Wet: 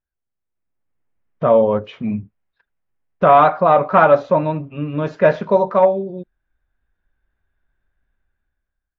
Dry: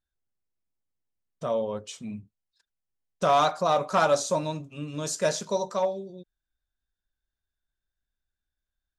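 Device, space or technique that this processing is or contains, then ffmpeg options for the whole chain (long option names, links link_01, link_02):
action camera in a waterproof case: -af "lowpass=frequency=2300:width=0.5412,lowpass=frequency=2300:width=1.3066,dynaudnorm=framelen=240:gausssize=7:maxgain=17dB" -ar 16000 -c:a aac -b:a 64k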